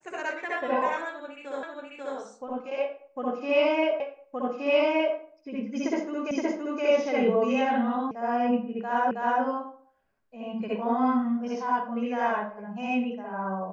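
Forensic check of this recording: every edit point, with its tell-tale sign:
1.63 s: repeat of the last 0.54 s
4.00 s: repeat of the last 1.17 s
6.31 s: repeat of the last 0.52 s
8.11 s: sound stops dead
9.11 s: repeat of the last 0.32 s

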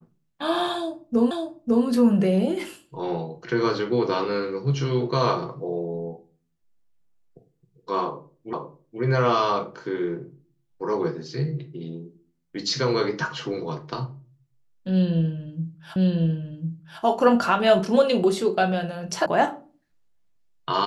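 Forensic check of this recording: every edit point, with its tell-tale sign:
1.31 s: repeat of the last 0.55 s
8.53 s: repeat of the last 0.48 s
15.96 s: repeat of the last 1.05 s
19.26 s: sound stops dead

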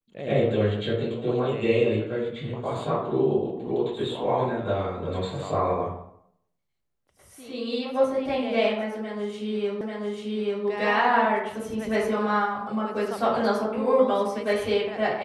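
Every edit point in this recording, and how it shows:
9.81 s: repeat of the last 0.84 s

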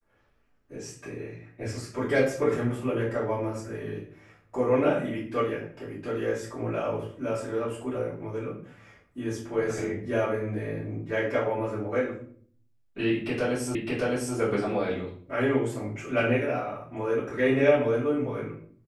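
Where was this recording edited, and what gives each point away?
13.75 s: repeat of the last 0.61 s

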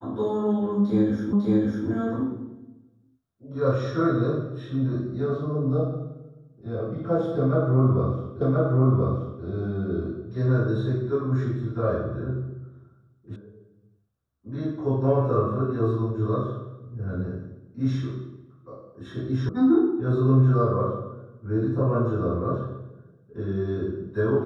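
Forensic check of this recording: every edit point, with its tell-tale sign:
1.33 s: repeat of the last 0.55 s
8.41 s: repeat of the last 1.03 s
13.36 s: sound stops dead
19.49 s: sound stops dead

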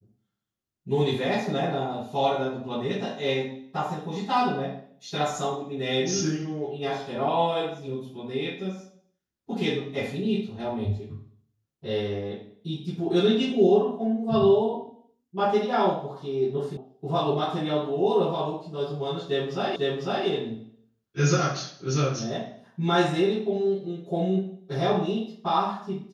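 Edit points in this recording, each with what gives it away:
16.77 s: sound stops dead
19.76 s: repeat of the last 0.5 s

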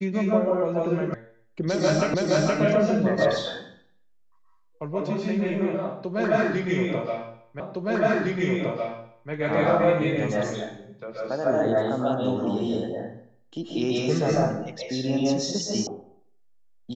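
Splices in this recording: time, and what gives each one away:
1.14 s: sound stops dead
2.14 s: repeat of the last 0.47 s
7.60 s: repeat of the last 1.71 s
15.87 s: sound stops dead

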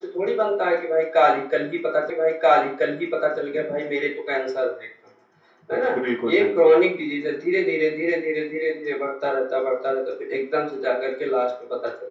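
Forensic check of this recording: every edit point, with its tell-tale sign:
2.10 s: repeat of the last 1.28 s

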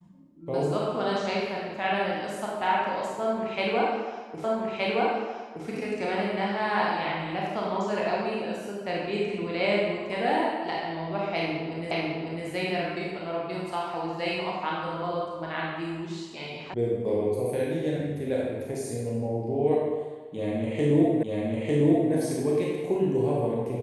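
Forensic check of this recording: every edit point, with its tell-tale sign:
4.44 s: repeat of the last 1.22 s
11.91 s: repeat of the last 0.55 s
16.74 s: sound stops dead
21.23 s: repeat of the last 0.9 s

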